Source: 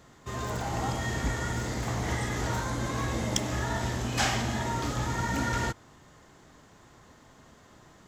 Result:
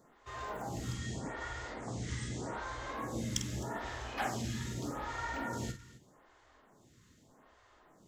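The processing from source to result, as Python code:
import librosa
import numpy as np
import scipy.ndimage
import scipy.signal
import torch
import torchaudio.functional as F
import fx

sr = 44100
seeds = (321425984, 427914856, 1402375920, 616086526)

y = fx.ellip_lowpass(x, sr, hz=9100.0, order=4, stop_db=40, at=(0.94, 2.89))
y = fx.echo_multitap(y, sr, ms=(48, 261), db=(-8.5, -18.0))
y = fx.stagger_phaser(y, sr, hz=0.82)
y = y * 10.0 ** (-5.5 / 20.0)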